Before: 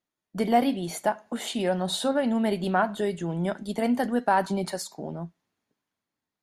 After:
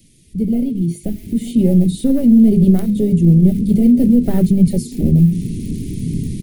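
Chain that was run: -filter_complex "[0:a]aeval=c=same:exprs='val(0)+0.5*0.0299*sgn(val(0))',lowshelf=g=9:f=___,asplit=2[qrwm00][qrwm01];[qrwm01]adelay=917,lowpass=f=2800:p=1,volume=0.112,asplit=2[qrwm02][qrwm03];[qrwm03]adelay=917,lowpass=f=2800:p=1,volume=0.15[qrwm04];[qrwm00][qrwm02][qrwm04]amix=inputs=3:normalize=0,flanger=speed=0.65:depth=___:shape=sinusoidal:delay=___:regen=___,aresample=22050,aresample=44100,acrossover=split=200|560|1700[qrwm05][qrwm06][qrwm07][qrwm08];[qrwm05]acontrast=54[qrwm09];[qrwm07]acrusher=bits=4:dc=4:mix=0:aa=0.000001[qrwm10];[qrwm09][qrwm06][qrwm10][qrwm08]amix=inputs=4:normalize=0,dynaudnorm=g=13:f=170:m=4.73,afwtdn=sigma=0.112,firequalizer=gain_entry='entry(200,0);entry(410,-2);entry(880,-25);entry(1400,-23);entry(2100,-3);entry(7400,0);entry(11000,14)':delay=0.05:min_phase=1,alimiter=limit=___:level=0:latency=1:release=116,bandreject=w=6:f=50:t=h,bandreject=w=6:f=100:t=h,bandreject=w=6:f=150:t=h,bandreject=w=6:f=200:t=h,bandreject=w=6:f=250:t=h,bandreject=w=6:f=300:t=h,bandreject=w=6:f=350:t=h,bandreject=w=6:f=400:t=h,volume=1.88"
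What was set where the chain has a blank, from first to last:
210, 4.2, 1.3, -74, 0.376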